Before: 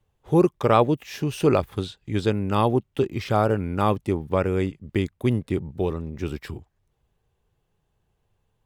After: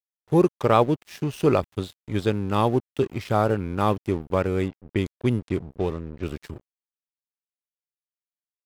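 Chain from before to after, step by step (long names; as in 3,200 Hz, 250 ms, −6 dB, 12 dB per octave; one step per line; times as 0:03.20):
dead-zone distortion −40 dBFS
0:04.68–0:06.23: low-pass that shuts in the quiet parts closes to 2,300 Hz, open at −20 dBFS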